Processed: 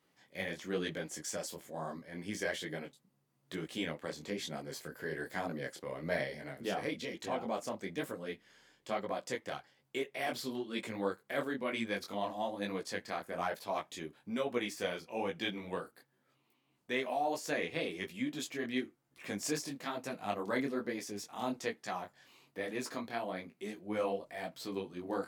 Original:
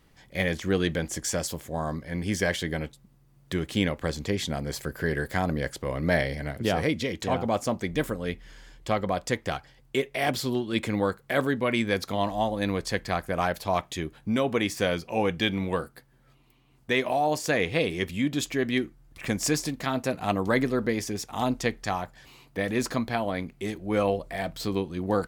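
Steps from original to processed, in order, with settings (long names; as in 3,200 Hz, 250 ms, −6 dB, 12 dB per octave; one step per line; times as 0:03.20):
high-pass filter 210 Hz 12 dB per octave
micro pitch shift up and down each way 38 cents
level −6 dB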